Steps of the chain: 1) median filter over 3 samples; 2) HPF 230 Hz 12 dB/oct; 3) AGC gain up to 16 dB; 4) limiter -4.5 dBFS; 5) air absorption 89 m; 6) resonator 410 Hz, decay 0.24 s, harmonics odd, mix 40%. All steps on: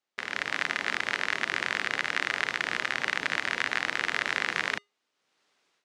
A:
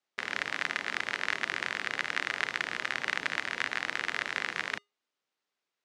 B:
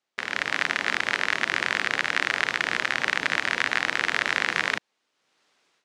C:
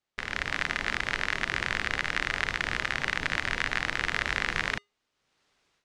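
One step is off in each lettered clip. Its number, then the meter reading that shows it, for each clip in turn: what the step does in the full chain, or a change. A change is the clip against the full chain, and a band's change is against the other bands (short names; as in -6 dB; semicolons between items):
3, crest factor change +1.5 dB; 6, loudness change +4.0 LU; 2, 125 Hz band +11.0 dB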